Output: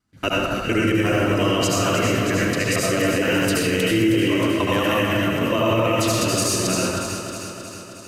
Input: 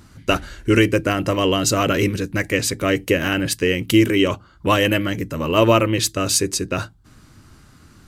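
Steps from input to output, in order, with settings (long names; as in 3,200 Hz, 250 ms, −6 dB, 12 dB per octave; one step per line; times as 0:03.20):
reversed piece by piece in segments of 115 ms
noise gate with hold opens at −35 dBFS
low-shelf EQ 91 Hz −5.5 dB
delay that swaps between a low-pass and a high-pass 157 ms, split 1,700 Hz, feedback 79%, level −6.5 dB
convolution reverb RT60 0.85 s, pre-delay 66 ms, DRR −4 dB
brickwall limiter −6 dBFS, peak gain reduction 8 dB
level −4.5 dB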